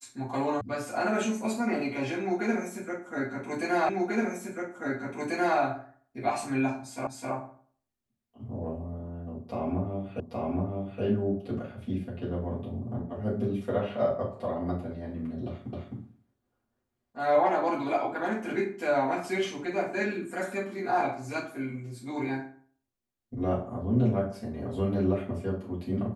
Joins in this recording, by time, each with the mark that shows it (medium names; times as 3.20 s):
0.61 s: sound stops dead
3.89 s: repeat of the last 1.69 s
7.07 s: repeat of the last 0.26 s
10.20 s: repeat of the last 0.82 s
15.73 s: repeat of the last 0.26 s